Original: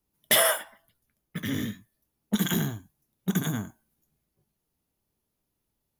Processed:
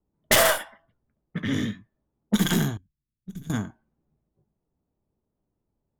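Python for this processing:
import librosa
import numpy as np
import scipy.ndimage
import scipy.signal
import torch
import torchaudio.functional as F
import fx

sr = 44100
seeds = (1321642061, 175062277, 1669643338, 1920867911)

y = fx.tracing_dist(x, sr, depth_ms=0.21)
y = fx.env_lowpass(y, sr, base_hz=830.0, full_db=-22.5)
y = fx.tone_stack(y, sr, knobs='10-0-1', at=(2.77, 3.5))
y = F.gain(torch.from_numpy(y), 4.0).numpy()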